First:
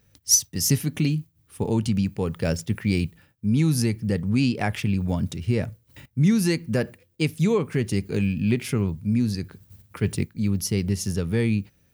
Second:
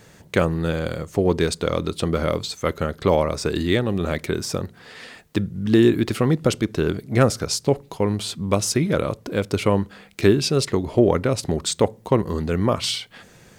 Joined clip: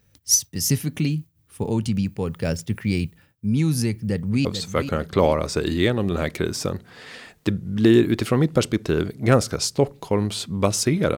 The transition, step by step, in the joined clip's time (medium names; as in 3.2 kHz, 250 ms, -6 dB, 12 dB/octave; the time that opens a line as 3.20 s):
first
3.89–4.45 s: echo throw 440 ms, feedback 50%, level -9.5 dB
4.45 s: go over to second from 2.34 s